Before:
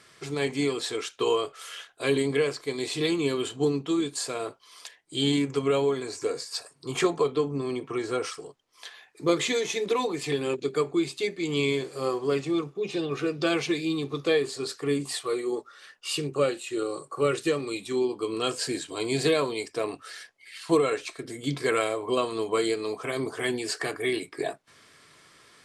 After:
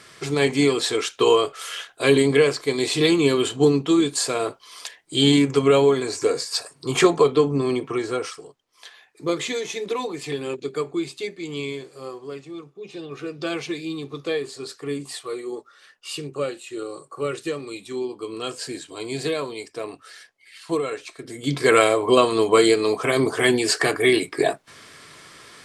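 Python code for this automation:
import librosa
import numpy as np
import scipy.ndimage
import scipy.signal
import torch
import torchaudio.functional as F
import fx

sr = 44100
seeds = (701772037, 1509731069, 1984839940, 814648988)

y = fx.gain(x, sr, db=fx.line((7.72, 8.0), (8.44, -0.5), (11.12, -0.5), (12.5, -10.0), (13.5, -2.0), (21.11, -2.0), (21.76, 10.0)))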